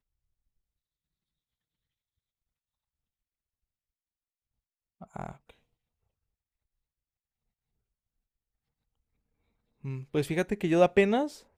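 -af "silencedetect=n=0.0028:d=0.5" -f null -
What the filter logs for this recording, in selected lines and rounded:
silence_start: 0.00
silence_end: 5.01 | silence_duration: 5.01
silence_start: 5.51
silence_end: 9.84 | silence_duration: 4.33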